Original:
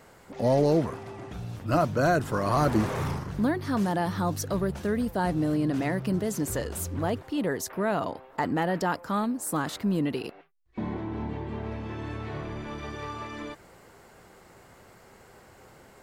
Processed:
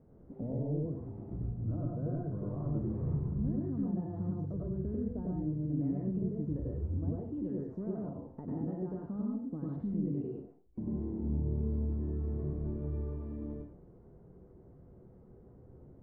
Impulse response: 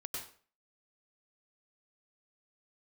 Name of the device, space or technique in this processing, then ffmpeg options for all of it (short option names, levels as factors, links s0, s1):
television next door: -filter_complex "[0:a]acompressor=threshold=0.0251:ratio=4,lowpass=280[s0];[1:a]atrim=start_sample=2205[s1];[s0][s1]afir=irnorm=-1:irlink=0,volume=1.5"